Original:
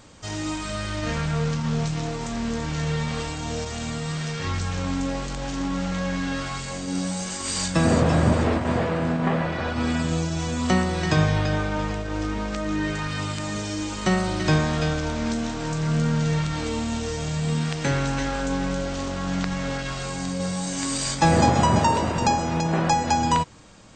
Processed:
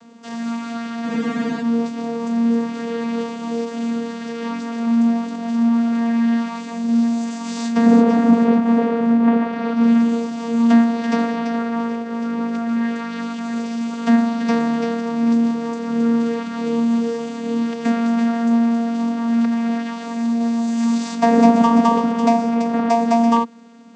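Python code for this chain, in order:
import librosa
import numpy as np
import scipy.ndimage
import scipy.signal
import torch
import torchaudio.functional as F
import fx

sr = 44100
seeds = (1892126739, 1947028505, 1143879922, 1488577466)

y = fx.vocoder(x, sr, bands=16, carrier='saw', carrier_hz=232.0)
y = fx.spec_freeze(y, sr, seeds[0], at_s=1.1, hold_s=0.52)
y = F.gain(torch.from_numpy(y), 7.5).numpy()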